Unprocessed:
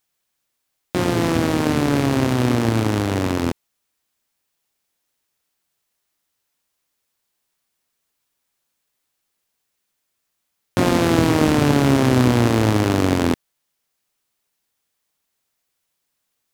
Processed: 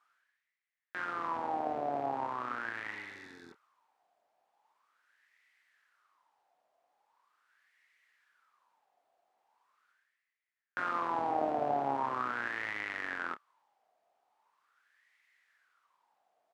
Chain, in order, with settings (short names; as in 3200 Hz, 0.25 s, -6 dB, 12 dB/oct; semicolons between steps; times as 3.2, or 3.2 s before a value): spectral repair 2.94–3.5, 460–3400 Hz both; reverse; upward compressor, threshold -36 dBFS; reverse; doubler 29 ms -12.5 dB; wah 0.41 Hz 690–2000 Hz, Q 8